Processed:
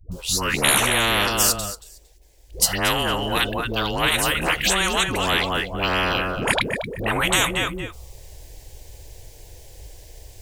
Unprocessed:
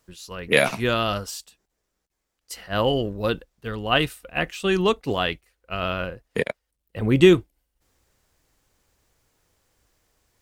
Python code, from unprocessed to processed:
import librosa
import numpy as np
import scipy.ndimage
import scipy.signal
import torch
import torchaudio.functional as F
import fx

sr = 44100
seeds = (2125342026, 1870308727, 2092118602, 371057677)

p1 = fx.low_shelf(x, sr, hz=150.0, db=10.0)
p2 = fx.dispersion(p1, sr, late='highs', ms=117.0, hz=450.0)
p3 = fx.env_phaser(p2, sr, low_hz=210.0, high_hz=4900.0, full_db=-19.0)
p4 = p3 + fx.echo_feedback(p3, sr, ms=229, feedback_pct=19, wet_db=-15.0, dry=0)
y = fx.spectral_comp(p4, sr, ratio=10.0)